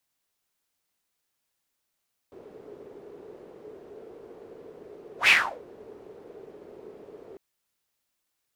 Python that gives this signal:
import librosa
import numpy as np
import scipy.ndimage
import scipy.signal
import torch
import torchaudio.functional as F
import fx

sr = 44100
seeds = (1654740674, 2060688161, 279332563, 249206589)

y = fx.whoosh(sr, seeds[0], length_s=5.05, peak_s=2.96, rise_s=0.11, fall_s=0.35, ends_hz=420.0, peak_hz=2500.0, q=5.7, swell_db=29.5)